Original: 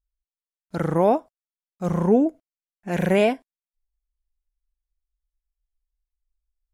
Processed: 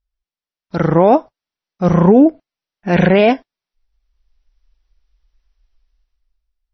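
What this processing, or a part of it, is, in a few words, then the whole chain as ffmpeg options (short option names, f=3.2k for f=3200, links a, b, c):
low-bitrate web radio: -af "dynaudnorm=f=150:g=11:m=16dB,alimiter=limit=-6.5dB:level=0:latency=1:release=10,volume=5dB" -ar 24000 -c:a libmp3lame -b:a 24k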